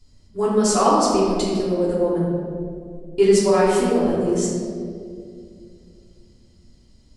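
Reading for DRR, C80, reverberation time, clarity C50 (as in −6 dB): −8.5 dB, 1.0 dB, 2.3 s, −1.0 dB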